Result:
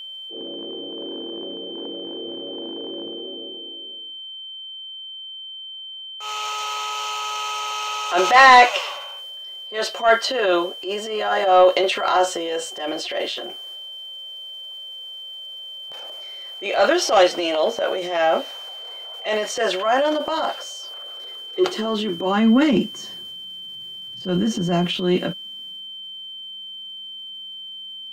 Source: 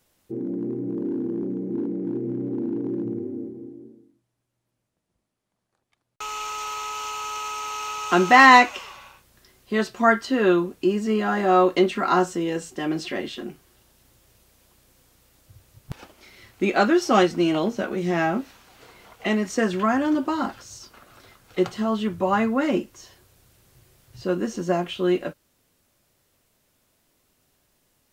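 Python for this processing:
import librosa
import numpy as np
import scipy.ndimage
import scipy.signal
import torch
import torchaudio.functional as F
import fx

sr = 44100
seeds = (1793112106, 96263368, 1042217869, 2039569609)

y = fx.dynamic_eq(x, sr, hz=3600.0, q=0.89, threshold_db=-42.0, ratio=4.0, max_db=7)
y = fx.filter_sweep_highpass(y, sr, from_hz=580.0, to_hz=190.0, start_s=20.9, end_s=22.83, q=3.8)
y = 10.0 ** (-1.5 / 20.0) * np.tanh(y / 10.0 ** (-1.5 / 20.0))
y = fx.transient(y, sr, attack_db=-9, sustain_db=6)
y = y + 10.0 ** (-33.0 / 20.0) * np.sin(2.0 * np.pi * 3100.0 * np.arange(len(y)) / sr)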